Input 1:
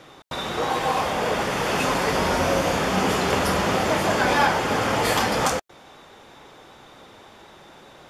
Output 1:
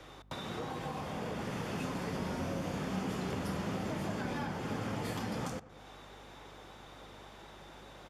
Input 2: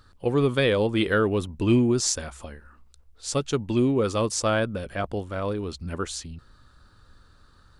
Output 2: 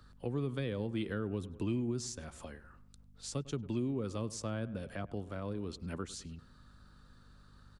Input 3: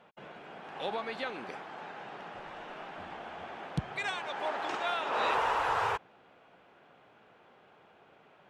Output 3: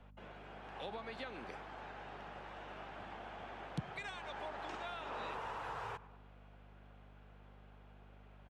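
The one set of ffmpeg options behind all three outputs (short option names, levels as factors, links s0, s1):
-filter_complex "[0:a]asplit=2[s0][s1];[s1]adelay=100,lowpass=f=1900:p=1,volume=0.112,asplit=2[s2][s3];[s3]adelay=100,lowpass=f=1900:p=1,volume=0.45,asplit=2[s4][s5];[s5]adelay=100,lowpass=f=1900:p=1,volume=0.45,asplit=2[s6][s7];[s7]adelay=100,lowpass=f=1900:p=1,volume=0.45[s8];[s0][s2][s4][s6][s8]amix=inputs=5:normalize=0,aeval=exprs='val(0)+0.00251*(sin(2*PI*50*n/s)+sin(2*PI*2*50*n/s)/2+sin(2*PI*3*50*n/s)/3+sin(2*PI*4*50*n/s)/4+sin(2*PI*5*50*n/s)/5)':c=same,acrossover=split=92|270[s9][s10][s11];[s9]acompressor=threshold=0.00251:ratio=4[s12];[s10]acompressor=threshold=0.0355:ratio=4[s13];[s11]acompressor=threshold=0.0141:ratio=4[s14];[s12][s13][s14]amix=inputs=3:normalize=0,volume=0.531"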